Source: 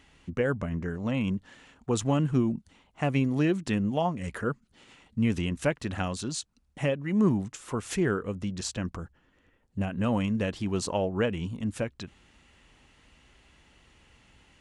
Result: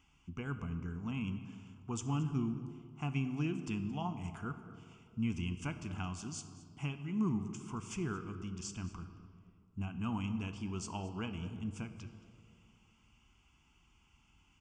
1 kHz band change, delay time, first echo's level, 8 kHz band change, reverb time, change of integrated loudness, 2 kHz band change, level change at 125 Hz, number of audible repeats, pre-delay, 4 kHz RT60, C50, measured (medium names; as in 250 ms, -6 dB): -10.0 dB, 224 ms, -19.0 dB, -9.0 dB, 2.3 s, -10.0 dB, -11.5 dB, -7.5 dB, 1, 12 ms, 1.2 s, 10.0 dB